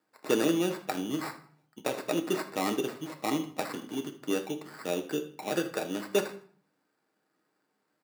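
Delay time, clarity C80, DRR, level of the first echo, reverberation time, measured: 79 ms, 16.5 dB, 4.5 dB, −16.5 dB, 0.50 s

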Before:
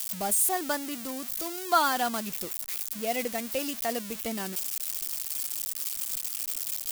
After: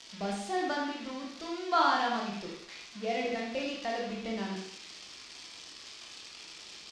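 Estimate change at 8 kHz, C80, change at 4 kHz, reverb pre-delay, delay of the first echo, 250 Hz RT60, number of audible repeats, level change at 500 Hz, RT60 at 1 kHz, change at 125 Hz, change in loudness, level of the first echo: −18.5 dB, 6.0 dB, −2.0 dB, 18 ms, 79 ms, 0.55 s, 1, −1.5 dB, 0.65 s, +1.0 dB, −4.0 dB, −6.5 dB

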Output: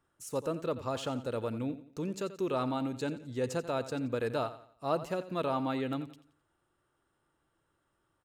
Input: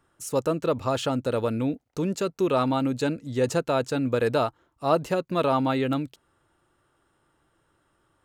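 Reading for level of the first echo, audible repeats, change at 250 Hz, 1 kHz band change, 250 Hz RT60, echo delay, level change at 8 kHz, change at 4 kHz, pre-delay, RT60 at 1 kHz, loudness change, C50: −14.0 dB, 3, −8.5 dB, −9.0 dB, no reverb audible, 87 ms, −9.0 dB, −9.0 dB, no reverb audible, no reverb audible, −9.0 dB, no reverb audible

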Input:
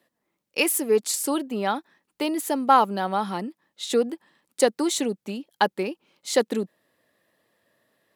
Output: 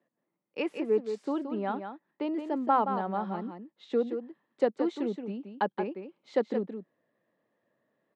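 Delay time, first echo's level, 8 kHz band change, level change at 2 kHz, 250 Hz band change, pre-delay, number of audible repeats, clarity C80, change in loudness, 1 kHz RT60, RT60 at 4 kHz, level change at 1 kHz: 173 ms, −8.0 dB, below −35 dB, −11.5 dB, −4.5 dB, no reverb audible, 1, no reverb audible, −7.0 dB, no reverb audible, no reverb audible, −7.5 dB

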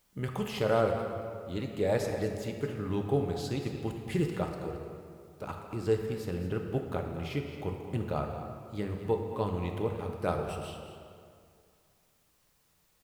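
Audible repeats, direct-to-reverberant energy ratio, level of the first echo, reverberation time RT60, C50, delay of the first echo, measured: 1, 2.5 dB, −12.0 dB, 2.3 s, 4.0 dB, 222 ms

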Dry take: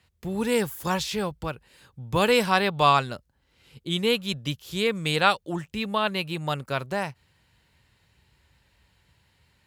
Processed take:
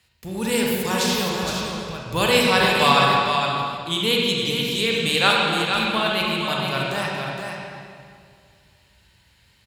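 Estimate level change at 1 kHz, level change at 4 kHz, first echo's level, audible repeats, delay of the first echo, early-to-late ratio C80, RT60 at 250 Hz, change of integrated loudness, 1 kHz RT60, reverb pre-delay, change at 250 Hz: +4.5 dB, +9.0 dB, −6.0 dB, 1, 465 ms, −1.0 dB, 2.4 s, +5.0 dB, 2.0 s, 32 ms, +4.0 dB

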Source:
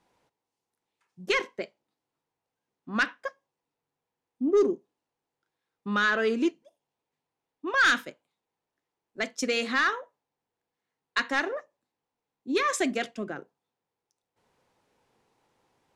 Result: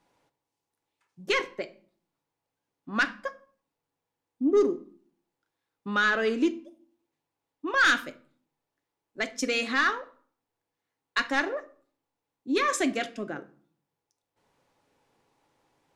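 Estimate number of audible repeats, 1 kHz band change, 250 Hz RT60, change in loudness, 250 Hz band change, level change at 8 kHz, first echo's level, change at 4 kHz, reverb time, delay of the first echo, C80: no echo audible, +0.5 dB, 0.75 s, +0.5 dB, +1.0 dB, +0.5 dB, no echo audible, +0.5 dB, 0.50 s, no echo audible, 22.0 dB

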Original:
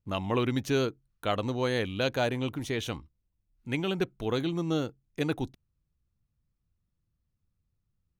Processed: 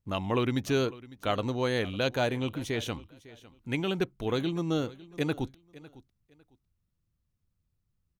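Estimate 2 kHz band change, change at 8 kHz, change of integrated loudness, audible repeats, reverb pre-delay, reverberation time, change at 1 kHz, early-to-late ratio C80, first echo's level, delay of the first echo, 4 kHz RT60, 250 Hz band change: 0.0 dB, 0.0 dB, 0.0 dB, 2, no reverb audible, no reverb audible, 0.0 dB, no reverb audible, −19.5 dB, 553 ms, no reverb audible, 0.0 dB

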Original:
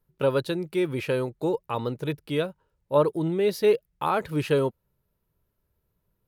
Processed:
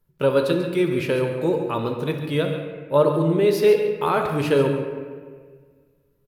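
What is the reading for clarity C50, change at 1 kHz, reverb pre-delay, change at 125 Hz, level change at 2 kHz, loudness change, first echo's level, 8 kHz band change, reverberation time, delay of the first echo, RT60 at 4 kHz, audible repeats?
4.5 dB, +3.5 dB, 5 ms, +5.5 dB, +5.0 dB, +5.0 dB, −10.5 dB, can't be measured, 1.7 s, 139 ms, 1.1 s, 1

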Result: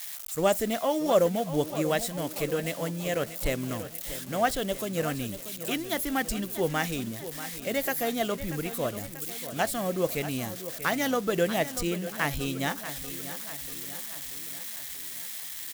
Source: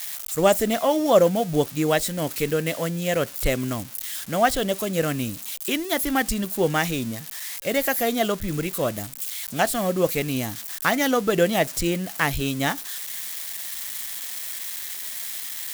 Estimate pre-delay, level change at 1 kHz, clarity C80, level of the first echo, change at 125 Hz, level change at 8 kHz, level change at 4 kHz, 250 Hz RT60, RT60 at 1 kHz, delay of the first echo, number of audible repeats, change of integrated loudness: no reverb audible, −5.5 dB, no reverb audible, −12.5 dB, −5.5 dB, −5.5 dB, −5.5 dB, no reverb audible, no reverb audible, 637 ms, 5, −5.5 dB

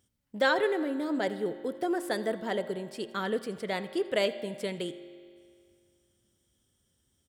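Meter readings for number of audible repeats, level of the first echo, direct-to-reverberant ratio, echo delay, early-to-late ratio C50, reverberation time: 1, −20.5 dB, 10.5 dB, 83 ms, 12.0 dB, 2.2 s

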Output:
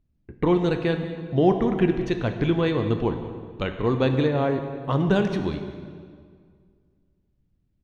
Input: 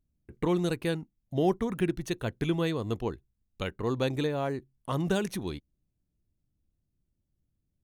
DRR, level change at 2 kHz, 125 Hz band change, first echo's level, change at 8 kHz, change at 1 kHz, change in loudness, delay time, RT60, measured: 6.0 dB, +6.0 dB, +7.5 dB, −17.5 dB, can't be measured, +7.0 dB, +7.0 dB, 193 ms, 2.0 s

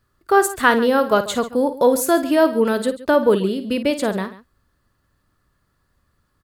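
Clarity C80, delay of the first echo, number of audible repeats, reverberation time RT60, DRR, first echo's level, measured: no reverb audible, 53 ms, 2, no reverb audible, no reverb audible, −11.5 dB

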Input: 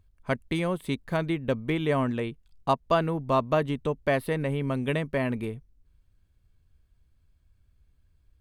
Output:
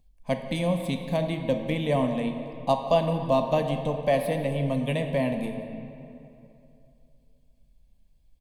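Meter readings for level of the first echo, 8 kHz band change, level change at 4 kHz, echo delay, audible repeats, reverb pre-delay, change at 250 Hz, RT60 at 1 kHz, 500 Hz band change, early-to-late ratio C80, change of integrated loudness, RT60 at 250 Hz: −18.5 dB, can't be measured, +2.0 dB, 178 ms, 1, 6 ms, +1.0 dB, 2.7 s, +2.5 dB, 7.5 dB, +1.5 dB, 2.9 s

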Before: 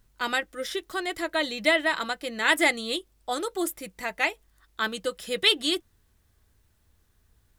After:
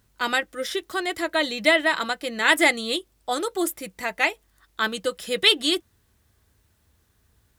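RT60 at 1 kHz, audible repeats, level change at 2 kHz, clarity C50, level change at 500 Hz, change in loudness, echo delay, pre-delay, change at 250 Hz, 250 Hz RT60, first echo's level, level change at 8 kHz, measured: no reverb audible, no echo audible, +3.5 dB, no reverb audible, +3.5 dB, +3.5 dB, no echo audible, no reverb audible, +3.5 dB, no reverb audible, no echo audible, +3.5 dB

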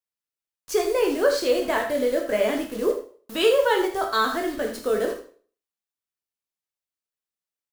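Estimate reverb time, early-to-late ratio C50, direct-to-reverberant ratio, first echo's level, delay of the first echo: 0.45 s, 7.0 dB, 1.5 dB, −11.0 dB, 79 ms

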